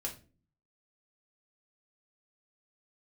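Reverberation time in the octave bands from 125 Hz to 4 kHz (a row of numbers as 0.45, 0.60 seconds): 0.75, 0.70, 0.45, 0.30, 0.30, 0.30 seconds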